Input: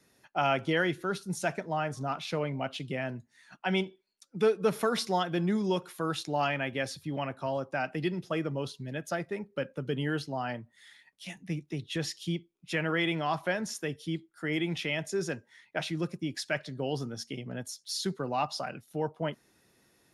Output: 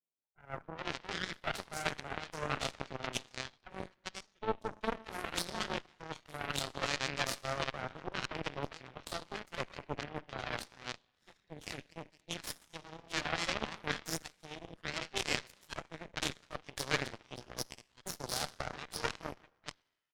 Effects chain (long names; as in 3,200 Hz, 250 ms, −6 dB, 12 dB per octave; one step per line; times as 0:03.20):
sub-octave generator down 2 octaves, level −5 dB
reversed playback
downward compressor 6 to 1, threshold −36 dBFS, peak gain reduction 15 dB
reversed playback
high-pass filter 76 Hz 12 dB per octave
high-shelf EQ 4,000 Hz −3.5 dB
convolution reverb RT60 1.4 s, pre-delay 13 ms, DRR 5.5 dB
automatic gain control gain up to 10 dB
mid-hump overdrive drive 10 dB, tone 4,100 Hz, clips at −10 dBFS
multiband delay without the direct sound lows, highs 400 ms, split 950 Hz
harmonic generator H 2 −9 dB, 3 −9 dB, 5 −39 dB, 8 −37 dB, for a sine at −13.5 dBFS
in parallel at 0 dB: brickwall limiter −22.5 dBFS, peak gain reduction 13.5 dB
on the sum: level −2 dB